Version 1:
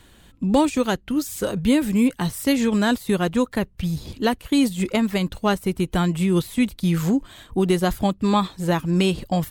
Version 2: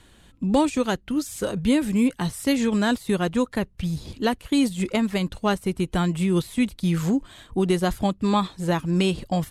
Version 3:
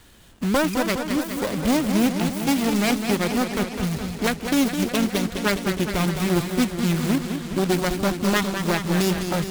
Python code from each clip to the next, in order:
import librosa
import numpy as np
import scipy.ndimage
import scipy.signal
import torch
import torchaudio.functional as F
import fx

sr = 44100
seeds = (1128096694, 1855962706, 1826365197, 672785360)

y1 = scipy.signal.sosfilt(scipy.signal.butter(4, 12000.0, 'lowpass', fs=sr, output='sos'), x)
y1 = y1 * librosa.db_to_amplitude(-2.0)
y2 = fx.self_delay(y1, sr, depth_ms=0.55)
y2 = fx.quant_companded(y2, sr, bits=4)
y2 = fx.echo_warbled(y2, sr, ms=207, feedback_pct=70, rate_hz=2.8, cents=108, wet_db=-7.5)